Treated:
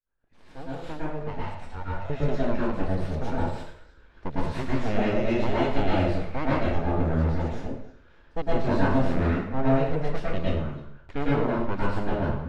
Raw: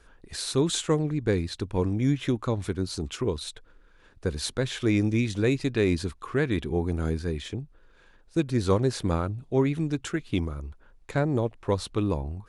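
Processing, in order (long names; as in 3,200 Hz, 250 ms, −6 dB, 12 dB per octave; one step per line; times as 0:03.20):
fade in at the beginning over 2.29 s
0:01.28–0:02.10: high-pass filter 400 Hz 24 dB per octave
full-wave rectification
head-to-tape spacing loss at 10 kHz 27 dB
echo through a band-pass that steps 103 ms, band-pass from 720 Hz, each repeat 1.4 octaves, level −11 dB
dense smooth reverb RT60 0.59 s, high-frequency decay 0.95×, pre-delay 95 ms, DRR −7 dB
level −1 dB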